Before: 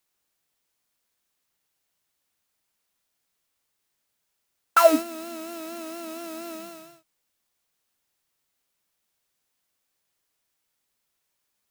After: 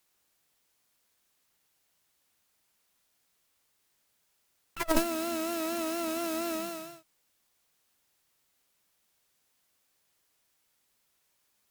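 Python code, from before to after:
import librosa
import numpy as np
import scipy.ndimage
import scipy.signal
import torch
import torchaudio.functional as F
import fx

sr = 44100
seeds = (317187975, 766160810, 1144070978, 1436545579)

y = fx.cheby_harmonics(x, sr, harmonics=(3, 4), levels_db=(-15, -9), full_scale_db=-3.5)
y = fx.over_compress(y, sr, threshold_db=-27.0, ratio=-0.5)
y = y * librosa.db_to_amplitude(2.5)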